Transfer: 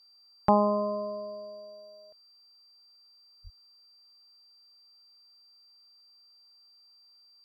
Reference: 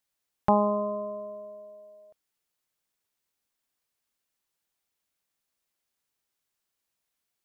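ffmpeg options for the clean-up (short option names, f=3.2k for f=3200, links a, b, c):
-filter_complex "[0:a]bandreject=f=4.7k:w=30,asplit=3[a][b][c];[a]afade=t=out:st=3.43:d=0.02[d];[b]highpass=f=140:w=0.5412,highpass=f=140:w=1.3066,afade=t=in:st=3.43:d=0.02,afade=t=out:st=3.55:d=0.02[e];[c]afade=t=in:st=3.55:d=0.02[f];[d][e][f]amix=inputs=3:normalize=0,afftdn=nr=23:nf=-60"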